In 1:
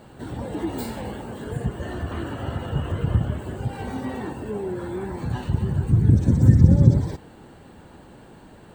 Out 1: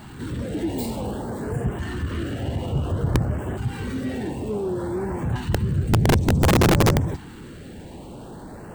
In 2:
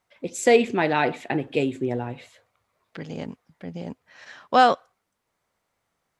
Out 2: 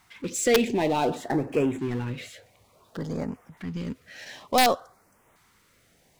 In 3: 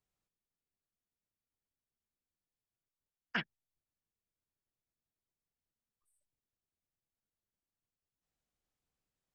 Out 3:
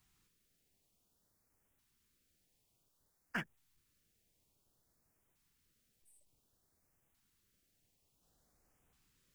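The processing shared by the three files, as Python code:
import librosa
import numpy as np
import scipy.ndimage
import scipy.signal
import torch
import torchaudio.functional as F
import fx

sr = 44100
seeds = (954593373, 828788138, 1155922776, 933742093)

y = fx.power_curve(x, sr, exponent=0.7)
y = fx.filter_lfo_notch(y, sr, shape='saw_up', hz=0.56, low_hz=490.0, high_hz=4900.0, q=0.82)
y = (np.mod(10.0 ** (7.0 / 20.0) * y + 1.0, 2.0) - 1.0) / 10.0 ** (7.0 / 20.0)
y = y * 10.0 ** (-4.5 / 20.0)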